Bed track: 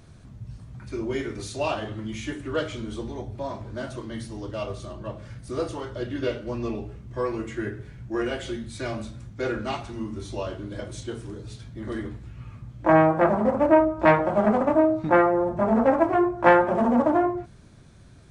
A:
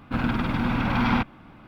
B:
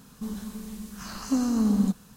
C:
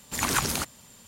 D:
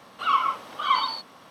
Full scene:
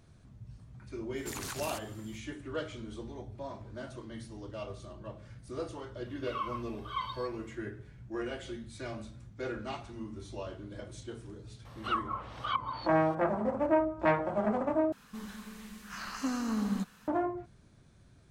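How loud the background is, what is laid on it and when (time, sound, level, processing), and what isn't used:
bed track −9.5 dB
0:01.14: mix in C −7.5 dB, fades 0.05 s + downward compressor, threshold −29 dBFS
0:06.06: mix in D −17.5 dB + comb filter 1.9 ms, depth 66%
0:11.65: mix in D −5 dB + treble cut that deepens with the level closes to 460 Hz, closed at −17.5 dBFS
0:14.92: overwrite with B −10 dB + parametric band 1,900 Hz +14 dB 2.2 octaves
not used: A

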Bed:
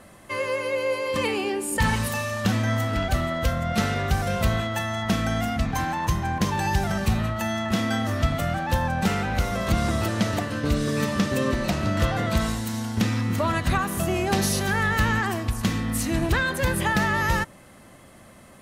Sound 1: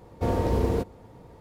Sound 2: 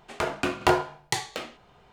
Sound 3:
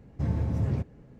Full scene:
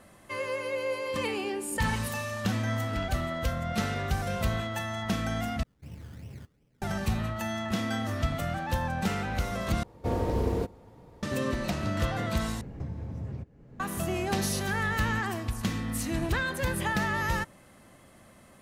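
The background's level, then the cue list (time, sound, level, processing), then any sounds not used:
bed −6 dB
0:05.63: overwrite with 3 −16.5 dB + sample-and-hold swept by an LFO 22×, swing 60% 2.7 Hz
0:09.83: overwrite with 1 −3.5 dB
0:12.61: overwrite with 3 −9.5 dB + multiband upward and downward compressor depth 100%
not used: 2

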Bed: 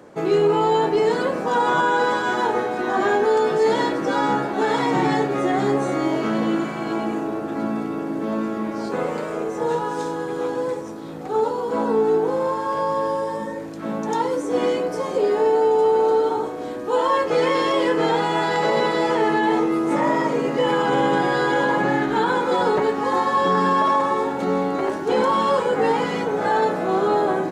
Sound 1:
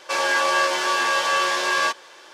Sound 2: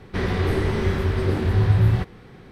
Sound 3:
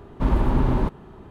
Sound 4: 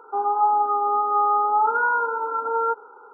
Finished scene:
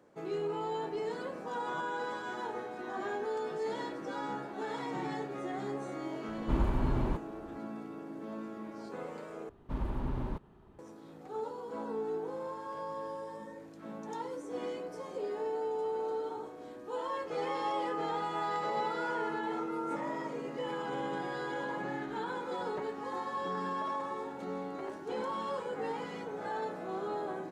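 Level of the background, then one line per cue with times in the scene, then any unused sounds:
bed −17.5 dB
0:06.28: mix in 3 −9 dB + speech leveller
0:09.49: overwrite with 3 −15 dB
0:17.23: mix in 4 −17 dB
not used: 1, 2

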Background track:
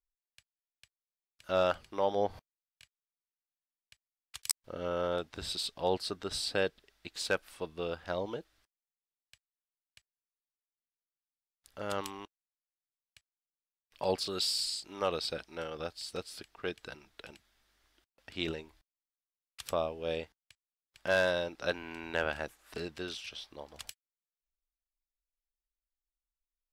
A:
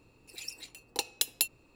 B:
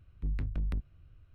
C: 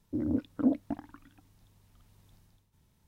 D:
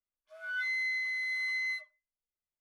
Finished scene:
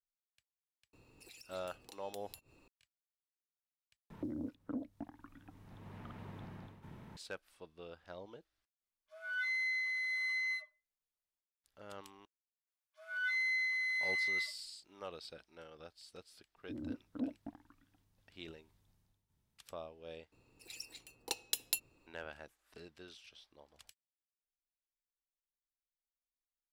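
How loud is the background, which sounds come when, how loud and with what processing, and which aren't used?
background track −14.5 dB
0:00.93: mix in A −2.5 dB + downward compressor, threshold −51 dBFS
0:04.10: overwrite with C −10 dB + multiband upward and downward compressor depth 100%
0:08.81: mix in D −3 dB
0:12.67: mix in D −1.5 dB + high-pass filter 730 Hz
0:16.56: mix in C −12.5 dB
0:20.32: overwrite with A −6.5 dB
not used: B

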